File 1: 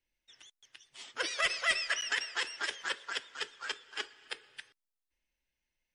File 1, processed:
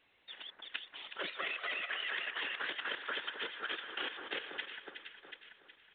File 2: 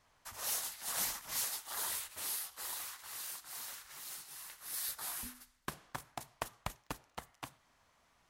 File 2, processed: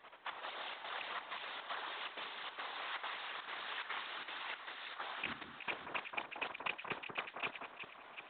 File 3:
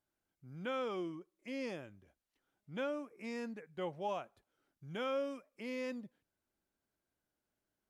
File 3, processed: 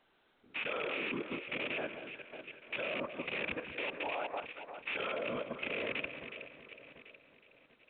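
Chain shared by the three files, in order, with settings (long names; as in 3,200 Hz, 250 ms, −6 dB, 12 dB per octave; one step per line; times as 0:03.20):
loose part that buzzes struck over −48 dBFS, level −23 dBFS
high-pass filter 300 Hz 24 dB per octave
reversed playback
downward compressor 8 to 1, threshold −48 dBFS
reversed playback
random phases in short frames
on a send: delay that swaps between a low-pass and a high-pass 184 ms, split 1,600 Hz, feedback 73%, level −5.5 dB
on the sum: output level in coarse steps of 9 dB
level +17 dB
A-law companding 64 kbit/s 8,000 Hz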